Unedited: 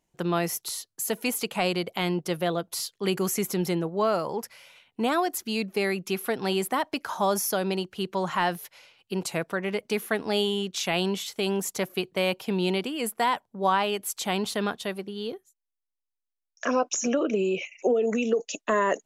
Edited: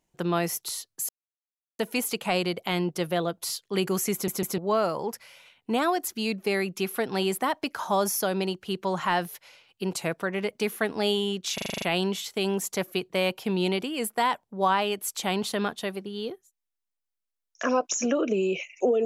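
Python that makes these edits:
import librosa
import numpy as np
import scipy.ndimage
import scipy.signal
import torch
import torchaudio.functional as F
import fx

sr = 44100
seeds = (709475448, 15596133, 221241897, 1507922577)

y = fx.edit(x, sr, fx.insert_silence(at_s=1.09, length_s=0.7),
    fx.stutter_over(start_s=3.43, slice_s=0.15, count=3),
    fx.stutter(start_s=10.84, slice_s=0.04, count=8), tone=tone)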